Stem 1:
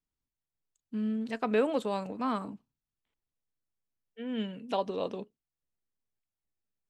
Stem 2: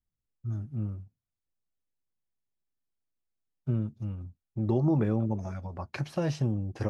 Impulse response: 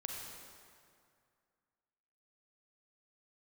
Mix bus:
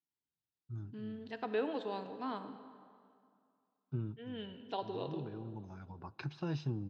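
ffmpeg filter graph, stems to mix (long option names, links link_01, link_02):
-filter_complex "[0:a]volume=-7.5dB,asplit=3[link_01][link_02][link_03];[link_02]volume=-3dB[link_04];[1:a]aecho=1:1:0.8:0.52,adelay=250,volume=-5.5dB,asplit=2[link_05][link_06];[link_06]volume=-21dB[link_07];[link_03]apad=whole_len=315231[link_08];[link_05][link_08]sidechaincompress=threshold=-49dB:ratio=8:attack=16:release=839[link_09];[2:a]atrim=start_sample=2205[link_10];[link_04][link_07]amix=inputs=2:normalize=0[link_11];[link_11][link_10]afir=irnorm=-1:irlink=0[link_12];[link_01][link_09][link_12]amix=inputs=3:normalize=0,highpass=170,equalizer=frequency=220:width_type=q:width=4:gain=-9,equalizer=frequency=560:width_type=q:width=4:gain=-9,equalizer=frequency=1200:width_type=q:width=4:gain=-8,equalizer=frequency=2300:width_type=q:width=4:gain=-9,lowpass=frequency=4600:width=0.5412,lowpass=frequency=4600:width=1.3066"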